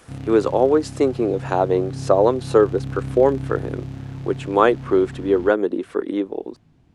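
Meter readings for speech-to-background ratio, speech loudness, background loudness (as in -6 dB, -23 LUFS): 12.5 dB, -20.0 LUFS, -32.5 LUFS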